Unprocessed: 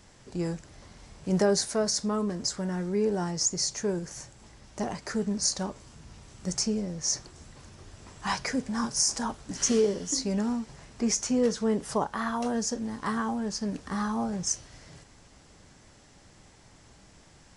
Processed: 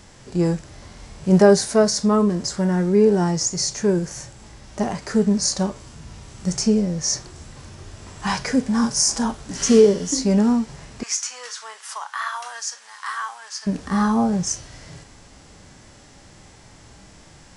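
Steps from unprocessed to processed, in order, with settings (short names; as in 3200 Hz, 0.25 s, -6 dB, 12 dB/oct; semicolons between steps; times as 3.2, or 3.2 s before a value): 11.03–13.67 HPF 1100 Hz 24 dB/oct; harmonic-percussive split harmonic +9 dB; gain +2.5 dB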